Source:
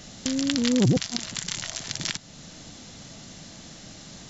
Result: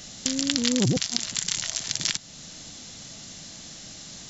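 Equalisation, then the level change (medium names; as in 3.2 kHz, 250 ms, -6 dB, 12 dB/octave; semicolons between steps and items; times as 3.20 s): treble shelf 2.7 kHz +9.5 dB; -3.0 dB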